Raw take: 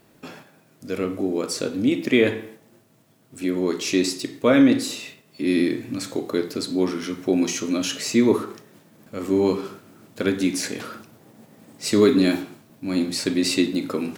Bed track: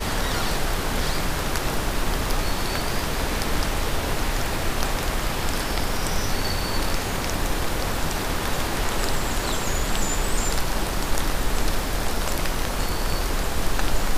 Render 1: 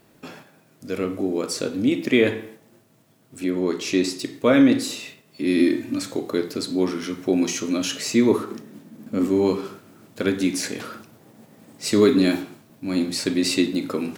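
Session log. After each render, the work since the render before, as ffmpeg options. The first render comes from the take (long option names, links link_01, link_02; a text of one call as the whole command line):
ffmpeg -i in.wav -filter_complex "[0:a]asettb=1/sr,asplit=3[link_01][link_02][link_03];[link_01]atrim=end=3.444[link_04];[link_02]atrim=start=3.44:end=4.19,asetpts=PTS-STARTPTS,afade=type=in:duration=0.004:curve=qsin,afade=type=out:start_time=0.746:duration=0.004:curve=qsin,highshelf=frequency=4800:gain=-5[link_05];[link_03]atrim=start=4.186[link_06];[link_04][link_05]acrossfade=duration=0.004:curve1=hsin:curve2=qsin[link_07];[link_07][link_06]acrossfade=duration=0.004:curve1=qsin:curve2=hsin,asettb=1/sr,asplit=3[link_08][link_09][link_10];[link_08]atrim=end=5.594[link_11];[link_09]atrim=start=5.59:end=6.02,asetpts=PTS-STARTPTS,afade=type=in:duration=0.004:curve=qsin,afade=type=out:start_time=0.426:duration=0.004:curve=qsin,aecho=1:1:3.3:0.65,atrim=end_sample=18963[link_12];[link_10]atrim=start=6.016[link_13];[link_11][link_12]acrossfade=duration=0.004:curve1=hsin:curve2=qsin[link_14];[link_14][link_13]acrossfade=duration=0.004:curve1=qsin:curve2=hsin,asettb=1/sr,asplit=3[link_15][link_16][link_17];[link_15]atrim=end=8.514[link_18];[link_16]atrim=start=8.51:end=9.28,asetpts=PTS-STARTPTS,afade=type=in:duration=0.004:curve=qsin,afade=type=out:start_time=0.766:duration=0.004:curve=qsin,equalizer=frequency=240:width=1.5:gain=14.5[link_19];[link_17]atrim=start=9.276[link_20];[link_18][link_19]acrossfade=duration=0.004:curve1=hsin:curve2=qsin[link_21];[link_21][link_20]acrossfade=duration=0.004:curve1=qsin:curve2=hsin" out.wav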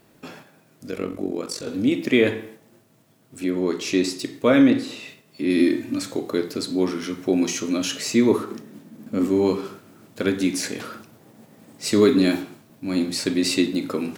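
ffmpeg -i in.wav -filter_complex "[0:a]asettb=1/sr,asplit=3[link_01][link_02][link_03];[link_01]atrim=end=0.914[link_04];[link_02]atrim=start=0.91:end=1.68,asetpts=PTS-STARTPTS,afade=type=in:duration=0.004:curve=qsin,afade=type=out:start_time=0.766:duration=0.004:curve=qsin,tremolo=f=46:d=0.75[link_05];[link_03]atrim=start=1.676[link_06];[link_04][link_05]acrossfade=duration=0.004:curve1=hsin:curve2=qsin[link_07];[link_07][link_06]acrossfade=duration=0.004:curve1=qsin:curve2=hsin,asettb=1/sr,asplit=3[link_08][link_09][link_10];[link_08]atrim=end=4.704[link_11];[link_09]atrim=start=4.7:end=5.5,asetpts=PTS-STARTPTS,afade=type=in:duration=0.004:curve=qsin,afade=type=out:start_time=0.796:duration=0.004:curve=qsin,acrossover=split=3600[link_12][link_13];[link_13]acompressor=threshold=-46dB:ratio=4:attack=1:release=60[link_14];[link_12][link_14]amix=inputs=2:normalize=0[link_15];[link_10]atrim=start=5.496[link_16];[link_11][link_15]acrossfade=duration=0.004:curve1=hsin:curve2=qsin[link_17];[link_17][link_16]acrossfade=duration=0.004:curve1=qsin:curve2=hsin" out.wav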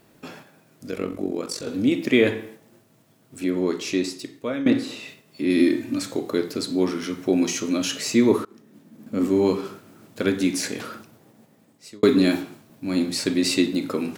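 ffmpeg -i in.wav -filter_complex "[0:a]asplit=4[link_01][link_02][link_03][link_04];[link_01]atrim=end=4.66,asetpts=PTS-STARTPTS,afade=type=out:start_time=3.63:duration=1.03:silence=0.16788[link_05];[link_02]atrim=start=4.66:end=8.45,asetpts=PTS-STARTPTS,afade=type=in:duration=0.004:curve=hsin:silence=0.16788,afade=type=out:start_time=3.786:duration=0.004:curve=hsin:silence=0.0794328[link_06];[link_03]atrim=start=8.45:end=12.03,asetpts=PTS-STARTPTS,afade=type=in:duration=0.85:silence=0.0794328,afade=type=out:start_time=2.47:duration=1.11[link_07];[link_04]atrim=start=12.03,asetpts=PTS-STARTPTS,afade=type=in:duration=0.004:curve=hsin[link_08];[link_05][link_06][link_07][link_08]concat=n=4:v=0:a=1" out.wav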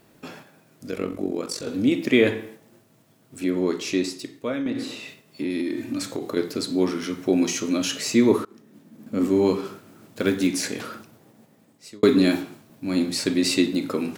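ffmpeg -i in.wav -filter_complex "[0:a]asettb=1/sr,asplit=3[link_01][link_02][link_03];[link_01]atrim=end=4.634[link_04];[link_02]atrim=start=4.63:end=6.37,asetpts=PTS-STARTPTS,afade=type=in:duration=0.004:curve=qsin,afade=type=out:start_time=1.736:duration=0.004:curve=qsin,acompressor=threshold=-22dB:ratio=12:attack=3.2:release=140:knee=1:detection=peak[link_05];[link_03]atrim=start=6.366[link_06];[link_04][link_05]acrossfade=duration=0.004:curve1=hsin:curve2=qsin[link_07];[link_07][link_06]acrossfade=duration=0.004:curve1=qsin:curve2=hsin,asettb=1/sr,asplit=3[link_08][link_09][link_10];[link_08]atrim=end=9.674[link_11];[link_09]atrim=start=9.67:end=10.47,asetpts=PTS-STARTPTS,afade=type=in:duration=0.004:curve=qsin,afade=type=out:start_time=0.796:duration=0.004:curve=qsin,acrusher=bits=7:mode=log:mix=0:aa=0.000001[link_12];[link_10]atrim=start=10.466[link_13];[link_11][link_12]acrossfade=duration=0.004:curve1=hsin:curve2=qsin[link_14];[link_14][link_13]acrossfade=duration=0.004:curve1=qsin:curve2=hsin" out.wav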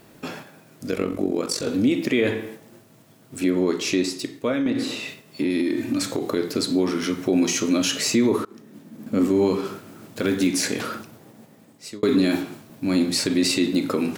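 ffmpeg -i in.wav -filter_complex "[0:a]asplit=2[link_01][link_02];[link_02]acompressor=threshold=-28dB:ratio=6,volume=0dB[link_03];[link_01][link_03]amix=inputs=2:normalize=0,alimiter=limit=-11dB:level=0:latency=1:release=38" out.wav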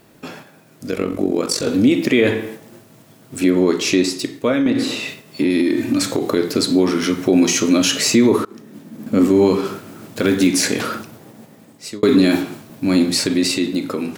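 ffmpeg -i in.wav -af "dynaudnorm=framelen=160:gausssize=13:maxgain=6.5dB" out.wav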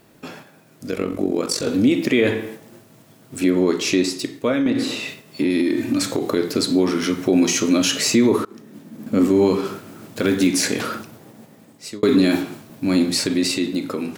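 ffmpeg -i in.wav -af "volume=-2.5dB" out.wav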